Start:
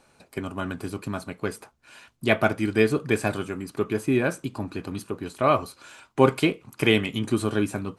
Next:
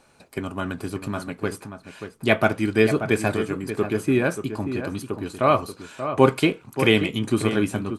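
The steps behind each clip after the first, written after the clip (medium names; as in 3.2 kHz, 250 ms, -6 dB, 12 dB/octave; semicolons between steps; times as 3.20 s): echo from a far wall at 100 m, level -9 dB; trim +2 dB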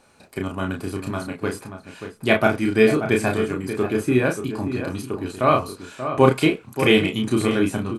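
doubling 32 ms -3.5 dB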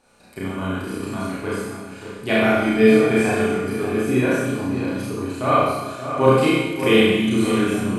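Schroeder reverb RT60 1.1 s, combs from 32 ms, DRR -5.5 dB; trim -6 dB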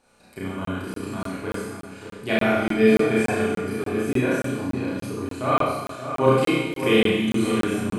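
crackling interface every 0.29 s, samples 1024, zero, from 0.65 s; trim -3 dB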